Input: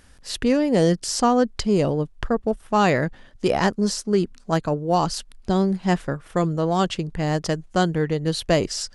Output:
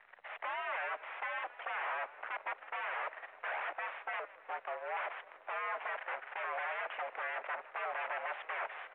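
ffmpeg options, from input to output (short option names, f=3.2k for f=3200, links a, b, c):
-filter_complex "[0:a]alimiter=limit=-12.5dB:level=0:latency=1:release=133,asettb=1/sr,asplit=3[a][b][c];[a]atrim=end=4.194[d];[b]atrim=start=4.19:end=4.97,asetpts=PTS-STARTPTS,afade=t=in:d=0.004:c=qsin,afade=t=out:st=0.776:d=0.004:c=qsin,acompressor=threshold=-39dB:ratio=2.5[e];[c]atrim=start=4.966[f];[d][e]acrossfade=d=0.004:c1=hsin:c2=qsin[g];[g][f]acrossfade=d=0.004:c1=qsin:c2=hsin,asoftclip=type=tanh:threshold=-14dB,acrusher=bits=8:mix=0:aa=0.000001,aeval=exprs='0.0266*(abs(mod(val(0)/0.0266+3,4)-2)-1)':c=same,aeval=exprs='0.0266*(cos(1*acos(clip(val(0)/0.0266,-1,1)))-cos(1*PI/2))+0.00944*(cos(2*acos(clip(val(0)/0.0266,-1,1)))-cos(2*PI/2))+0.00266*(cos(5*acos(clip(val(0)/0.0266,-1,1)))-cos(5*PI/2))+0.00668*(cos(6*acos(clip(val(0)/0.0266,-1,1)))-cos(6*PI/2))+0.00422*(cos(7*acos(clip(val(0)/0.0266,-1,1)))-cos(7*PI/2))':c=same,asplit=7[h][i][j][k][l][m][n];[i]adelay=156,afreqshift=-110,volume=-18.5dB[o];[j]adelay=312,afreqshift=-220,volume=-22.2dB[p];[k]adelay=468,afreqshift=-330,volume=-26dB[q];[l]adelay=624,afreqshift=-440,volume=-29.7dB[r];[m]adelay=780,afreqshift=-550,volume=-33.5dB[s];[n]adelay=936,afreqshift=-660,volume=-37.2dB[t];[h][o][p][q][r][s][t]amix=inputs=7:normalize=0,highpass=f=510:t=q:w=0.5412,highpass=f=510:t=q:w=1.307,lowpass=f=2.3k:t=q:w=0.5176,lowpass=f=2.3k:t=q:w=0.7071,lowpass=f=2.3k:t=q:w=1.932,afreqshift=91,volume=1dB" -ar 8000 -c:a pcm_mulaw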